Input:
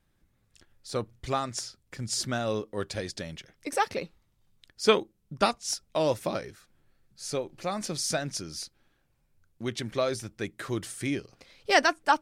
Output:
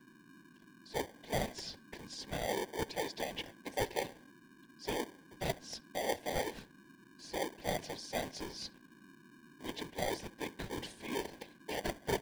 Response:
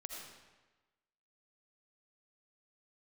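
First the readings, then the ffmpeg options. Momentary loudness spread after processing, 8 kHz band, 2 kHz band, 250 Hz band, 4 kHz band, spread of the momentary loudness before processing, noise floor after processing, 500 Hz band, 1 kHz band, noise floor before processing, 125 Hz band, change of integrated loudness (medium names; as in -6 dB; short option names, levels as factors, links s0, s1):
22 LU, -11.0 dB, -10.5 dB, -8.5 dB, -9.0 dB, 16 LU, -61 dBFS, -9.0 dB, -11.0 dB, -71 dBFS, -9.0 dB, -10.0 dB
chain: -filter_complex "[0:a]agate=range=0.126:threshold=0.00224:ratio=16:detection=peak,alimiter=limit=0.133:level=0:latency=1:release=233,areverse,acompressor=threshold=0.00708:ratio=12,areverse,acrossover=split=330 3800:gain=0.0708 1 0.0794[s0][s1][s2];[s0][s1][s2]amix=inputs=3:normalize=0,asplit=2[s3][s4];[s4]adelay=67,lowpass=f=1900:p=1,volume=0.112,asplit=2[s5][s6];[s6]adelay=67,lowpass=f=1900:p=1,volume=0.49,asplit=2[s7][s8];[s8]adelay=67,lowpass=f=1900:p=1,volume=0.49,asplit=2[s9][s10];[s10]adelay=67,lowpass=f=1900:p=1,volume=0.49[s11];[s3][s5][s7][s9][s11]amix=inputs=5:normalize=0,aeval=exprs='val(0)+0.000447*sin(2*PI*1600*n/s)':c=same,afftfilt=real='hypot(re,im)*cos(2*PI*random(0))':imag='hypot(re,im)*sin(2*PI*random(1))':win_size=512:overlap=0.75,acrossover=split=100|2200[s12][s13][s14];[s13]acrusher=samples=33:mix=1:aa=0.000001[s15];[s12][s15][s14]amix=inputs=3:normalize=0,volume=7.94"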